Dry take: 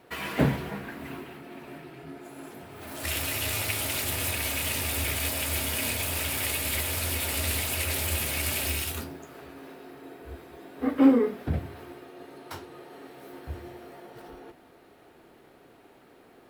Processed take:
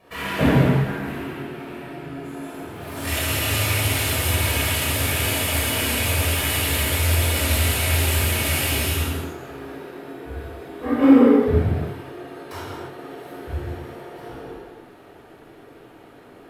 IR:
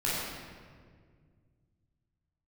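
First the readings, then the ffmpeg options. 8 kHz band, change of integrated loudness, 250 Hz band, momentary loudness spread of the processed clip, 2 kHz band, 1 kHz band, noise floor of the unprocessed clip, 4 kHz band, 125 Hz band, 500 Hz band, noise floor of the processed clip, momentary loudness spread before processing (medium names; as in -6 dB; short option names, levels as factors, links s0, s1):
+5.5 dB, +7.0 dB, +8.0 dB, 19 LU, +7.5 dB, +8.5 dB, -56 dBFS, +7.5 dB, +12.0 dB, +9.0 dB, -46 dBFS, 19 LU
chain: -filter_complex "[1:a]atrim=start_sample=2205,afade=t=out:st=0.28:d=0.01,atrim=end_sample=12789,asetrate=29547,aresample=44100[s0];[0:a][s0]afir=irnorm=-1:irlink=0,volume=0.668"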